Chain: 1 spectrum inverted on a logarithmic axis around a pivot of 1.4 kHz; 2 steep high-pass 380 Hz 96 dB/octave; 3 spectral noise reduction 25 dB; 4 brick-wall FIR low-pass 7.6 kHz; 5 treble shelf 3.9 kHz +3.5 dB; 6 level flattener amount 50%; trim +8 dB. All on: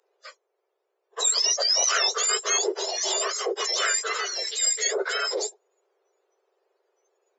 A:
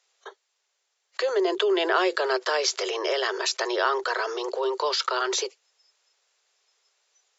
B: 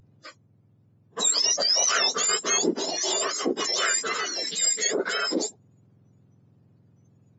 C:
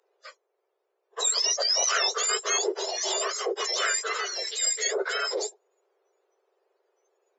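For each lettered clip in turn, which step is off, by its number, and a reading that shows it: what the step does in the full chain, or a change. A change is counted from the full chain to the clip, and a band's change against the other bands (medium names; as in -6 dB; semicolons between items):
1, 4 kHz band -9.5 dB; 2, 250 Hz band +10.5 dB; 5, loudness change -2.0 LU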